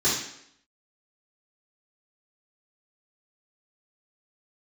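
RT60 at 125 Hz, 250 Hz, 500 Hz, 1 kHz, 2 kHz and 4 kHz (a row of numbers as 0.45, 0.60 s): 0.60, 0.75, 0.75, 0.70, 0.70, 0.70 s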